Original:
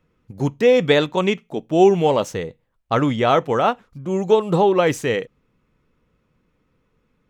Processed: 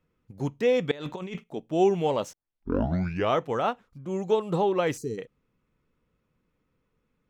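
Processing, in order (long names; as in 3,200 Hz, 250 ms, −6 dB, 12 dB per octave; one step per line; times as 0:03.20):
0:00.91–0:01.44: compressor whose output falls as the input rises −28 dBFS, ratio −1
0:02.33: tape start 1.05 s
0:04.97–0:05.18: gain on a spectral selection 460–4,000 Hz −25 dB
level −8.5 dB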